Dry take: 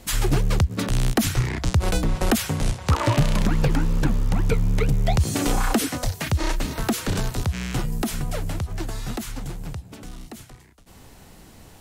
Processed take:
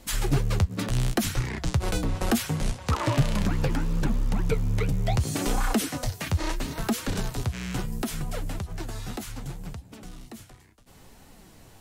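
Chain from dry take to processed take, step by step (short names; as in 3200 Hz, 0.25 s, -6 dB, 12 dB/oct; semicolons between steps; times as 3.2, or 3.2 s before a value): flange 0.71 Hz, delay 3.2 ms, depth 8.1 ms, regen +55%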